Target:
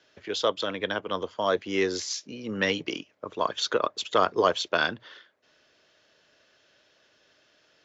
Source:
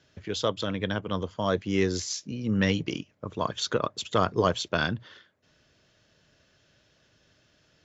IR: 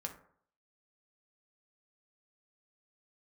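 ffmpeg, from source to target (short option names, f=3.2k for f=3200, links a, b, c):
-filter_complex "[0:a]acrossover=split=300 6700:gain=0.126 1 0.251[a][b][c];[a][b][c]amix=inputs=3:normalize=0,volume=3dB"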